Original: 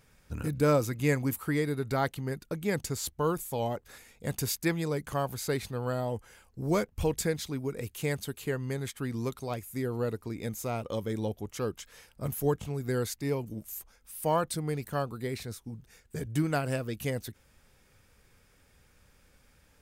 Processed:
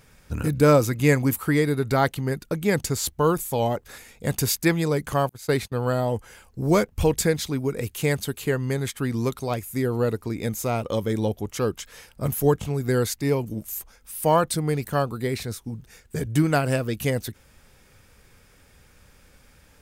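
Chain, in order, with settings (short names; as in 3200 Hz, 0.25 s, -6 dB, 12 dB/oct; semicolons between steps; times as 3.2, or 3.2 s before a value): 5.29–5.72 gate -35 dBFS, range -34 dB; gain +8 dB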